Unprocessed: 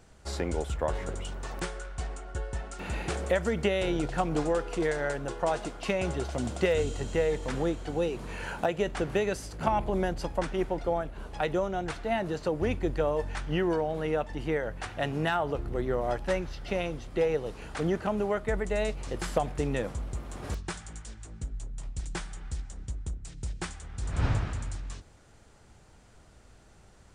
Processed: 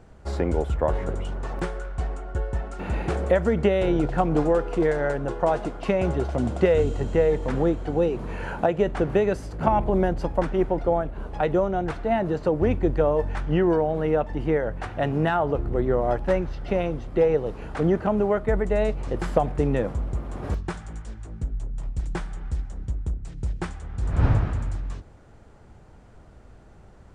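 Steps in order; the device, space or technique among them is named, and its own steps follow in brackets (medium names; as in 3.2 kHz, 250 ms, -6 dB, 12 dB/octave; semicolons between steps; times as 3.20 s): through cloth (treble shelf 2.3 kHz -15.5 dB); trim +7.5 dB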